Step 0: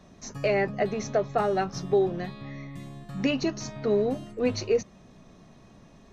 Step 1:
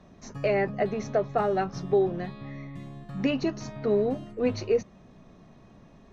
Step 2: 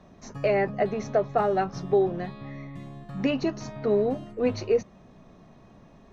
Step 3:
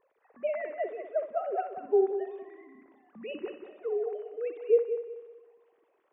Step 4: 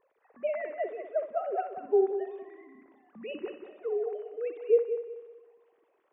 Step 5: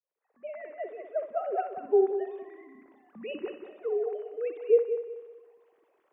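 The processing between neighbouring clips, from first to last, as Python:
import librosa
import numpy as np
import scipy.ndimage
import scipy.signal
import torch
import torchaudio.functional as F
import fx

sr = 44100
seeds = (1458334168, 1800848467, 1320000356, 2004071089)

y1 = fx.lowpass(x, sr, hz=2700.0, slope=6)
y2 = fx.peak_eq(y1, sr, hz=790.0, db=2.5, octaves=1.6)
y3 = fx.sine_speech(y2, sr)
y3 = fx.echo_heads(y3, sr, ms=62, heads='first and third', feedback_pct=49, wet_db=-10.5)
y3 = y3 * 10.0 ** (-6.0 / 20.0)
y4 = y3
y5 = fx.fade_in_head(y4, sr, length_s=1.6)
y5 = y5 * 10.0 ** (1.5 / 20.0)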